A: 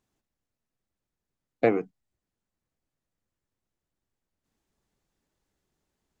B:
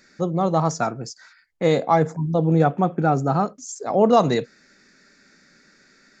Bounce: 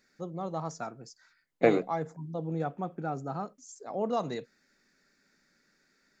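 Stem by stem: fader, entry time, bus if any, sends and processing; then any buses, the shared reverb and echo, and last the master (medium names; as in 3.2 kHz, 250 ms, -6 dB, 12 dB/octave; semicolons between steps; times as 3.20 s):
-0.5 dB, 0.00 s, no send, none
-14.5 dB, 0.00 s, no send, none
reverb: none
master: peaking EQ 64 Hz -12 dB 1 oct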